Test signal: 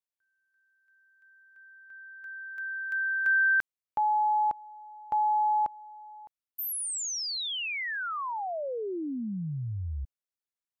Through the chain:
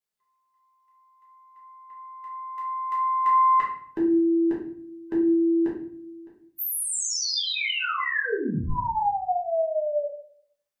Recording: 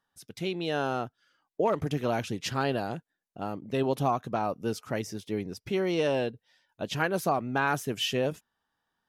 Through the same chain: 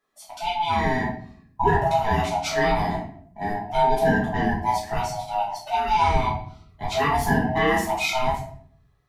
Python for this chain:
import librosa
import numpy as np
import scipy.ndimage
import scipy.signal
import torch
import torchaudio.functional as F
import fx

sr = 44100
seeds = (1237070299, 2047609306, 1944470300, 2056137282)

y = fx.band_swap(x, sr, width_hz=500)
y = fx.low_shelf(y, sr, hz=69.0, db=-8.0)
y = fx.room_shoebox(y, sr, seeds[0], volume_m3=77.0, walls='mixed', distance_m=1.4)